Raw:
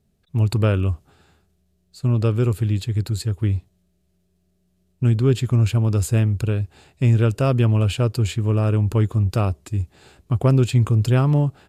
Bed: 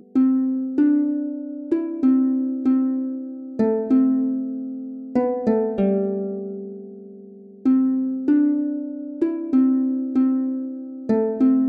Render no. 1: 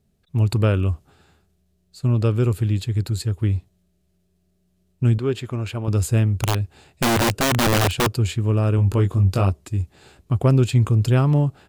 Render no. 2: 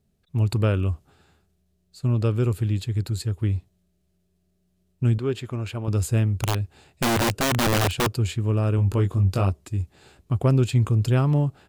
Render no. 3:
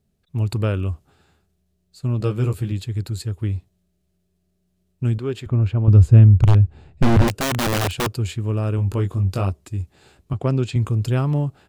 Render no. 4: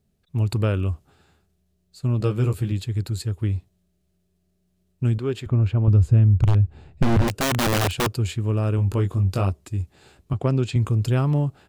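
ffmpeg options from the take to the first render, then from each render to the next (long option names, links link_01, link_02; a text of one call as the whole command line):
ffmpeg -i in.wav -filter_complex "[0:a]asettb=1/sr,asplit=3[link_01][link_02][link_03];[link_01]atrim=end=5.184[link_04];[link_02]atrim=start=5.18:end=5.88,asetpts=PTS-STARTPTS,afade=type=in:duration=0.004:curve=qsin,afade=type=out:start_time=0.696:duration=0.004:curve=qsin,bass=frequency=250:gain=-11,treble=frequency=4000:gain=-7[link_05];[link_03]atrim=start=5.876[link_06];[link_04][link_05]acrossfade=duration=0.004:curve1=hsin:curve2=qsin[link_07];[link_07][link_06]acrossfade=duration=0.004:curve1=qsin:curve2=hsin,asettb=1/sr,asplit=3[link_08][link_09][link_10];[link_08]atrim=end=6.384[link_11];[link_09]atrim=start=6.38:end=8.07,asetpts=PTS-STARTPTS,afade=type=in:duration=0.004:curve=qsin,afade=type=out:start_time=1.686:duration=0.004:curve=qsin,aeval=exprs='(mod(5.01*val(0)+1,2)-1)/5.01':channel_layout=same[link_12];[link_10]atrim=start=8.066[link_13];[link_11][link_12]acrossfade=duration=0.004:curve1=hsin:curve2=qsin[link_14];[link_14][link_13]acrossfade=duration=0.004:curve1=qsin:curve2=hsin,asettb=1/sr,asplit=3[link_15][link_16][link_17];[link_15]atrim=end=8.764[link_18];[link_16]atrim=start=8.76:end=9.5,asetpts=PTS-STARTPTS,afade=type=in:duration=0.004:curve=qsin,afade=type=out:start_time=0.736:duration=0.004:curve=qsin,asplit=2[link_19][link_20];[link_20]adelay=21,volume=-5.5dB[link_21];[link_19][link_21]amix=inputs=2:normalize=0,atrim=end_sample=32634[link_22];[link_17]atrim=start=9.496[link_23];[link_18][link_22]acrossfade=duration=0.004:curve1=hsin:curve2=qsin[link_24];[link_24][link_23]acrossfade=duration=0.004:curve1=qsin:curve2=hsin" out.wav
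ffmpeg -i in.wav -af "volume=-3dB" out.wav
ffmpeg -i in.wav -filter_complex "[0:a]asettb=1/sr,asplit=3[link_01][link_02][link_03];[link_01]atrim=end=2.194[link_04];[link_02]atrim=start=2.19:end=2.72,asetpts=PTS-STARTPTS,afade=type=in:duration=0.004:curve=qsin,afade=type=out:start_time=0.526:duration=0.004:curve=qsin,asplit=2[link_05][link_06];[link_06]adelay=15,volume=-4dB[link_07];[link_05][link_07]amix=inputs=2:normalize=0,atrim=end_sample=23373[link_08];[link_03]atrim=start=2.716[link_09];[link_04][link_08]acrossfade=duration=0.004:curve1=hsin:curve2=qsin[link_10];[link_10][link_09]acrossfade=duration=0.004:curve1=qsin:curve2=hsin,asettb=1/sr,asplit=3[link_11][link_12][link_13];[link_11]atrim=end=5.464[link_14];[link_12]atrim=start=5.46:end=7.28,asetpts=PTS-STARTPTS,afade=type=in:duration=0.004:curve=qsin,afade=type=out:start_time=1.816:duration=0.004:curve=qsin,aemphasis=mode=reproduction:type=riaa[link_15];[link_13]atrim=start=7.276[link_16];[link_14][link_15]acrossfade=duration=0.004:curve1=hsin:curve2=qsin[link_17];[link_17][link_16]acrossfade=duration=0.004:curve1=qsin:curve2=hsin,asettb=1/sr,asplit=3[link_18][link_19][link_20];[link_18]atrim=end=10.334[link_21];[link_19]atrim=start=10.33:end=10.76,asetpts=PTS-STARTPTS,afade=type=in:duration=0.004:curve=qsin,afade=type=out:start_time=0.426:duration=0.004:curve=qsin,highpass=110,lowpass=6800[link_22];[link_20]atrim=start=10.756[link_23];[link_21][link_22]acrossfade=duration=0.004:curve1=hsin:curve2=qsin[link_24];[link_24][link_23]acrossfade=duration=0.004:curve1=qsin:curve2=hsin" out.wav
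ffmpeg -i in.wav -af "acompressor=threshold=-15dB:ratio=2.5" out.wav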